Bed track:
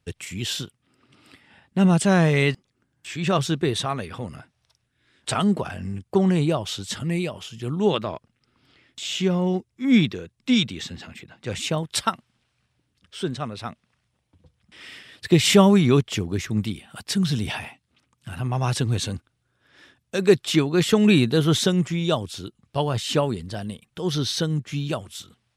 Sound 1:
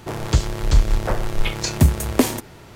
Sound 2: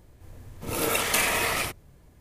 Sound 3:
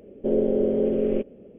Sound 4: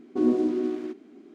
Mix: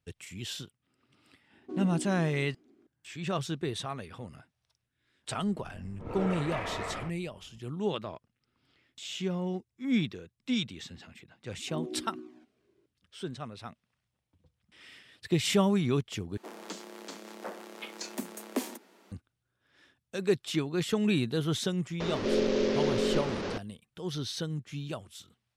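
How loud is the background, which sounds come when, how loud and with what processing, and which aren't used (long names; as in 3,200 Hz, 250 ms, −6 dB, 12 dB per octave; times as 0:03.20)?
bed track −10.5 dB
0:01.53: mix in 4 −14 dB
0:05.38: mix in 2 −6.5 dB + low-pass filter 1,400 Hz
0:11.52: mix in 4 −14 dB + flanger swept by the level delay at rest 2.2 ms, full sweep at −17.5 dBFS
0:16.37: overwrite with 1 −15 dB + Butterworth high-pass 190 Hz 96 dB per octave
0:22.00: mix in 3 −5.5 dB + linear delta modulator 32 kbit/s, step −23 dBFS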